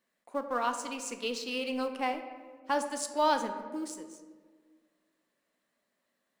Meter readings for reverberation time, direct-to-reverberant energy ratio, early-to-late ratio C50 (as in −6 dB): 1.6 s, 7.0 dB, 9.0 dB